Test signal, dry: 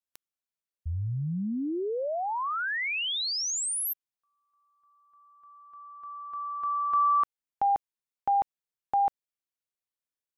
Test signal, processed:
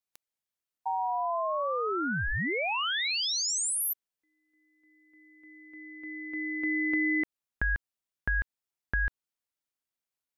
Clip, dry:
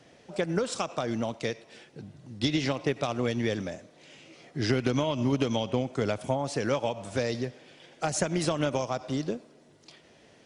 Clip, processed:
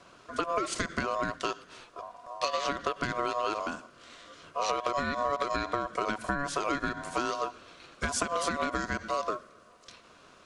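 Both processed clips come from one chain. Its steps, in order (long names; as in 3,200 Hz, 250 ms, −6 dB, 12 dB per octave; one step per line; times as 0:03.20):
downward compressor, threshold −27 dBFS
ring modulation 850 Hz
level +4 dB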